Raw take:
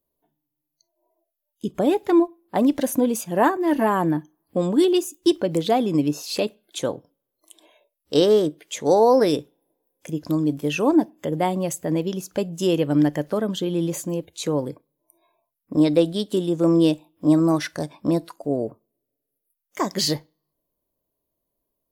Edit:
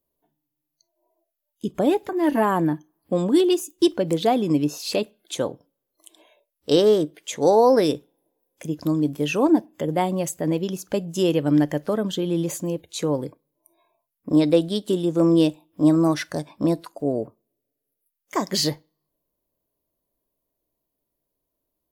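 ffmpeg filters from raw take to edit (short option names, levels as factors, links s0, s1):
-filter_complex "[0:a]asplit=2[s0][s1];[s0]atrim=end=2.092[s2];[s1]atrim=start=3.528[s3];[s2][s3]acrossfade=d=0.004:c1=hsin:c2=hsin"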